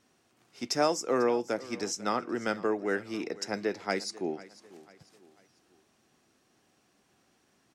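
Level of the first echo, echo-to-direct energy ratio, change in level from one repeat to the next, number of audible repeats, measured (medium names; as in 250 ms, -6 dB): -19.0 dB, -18.5 dB, -8.0 dB, 3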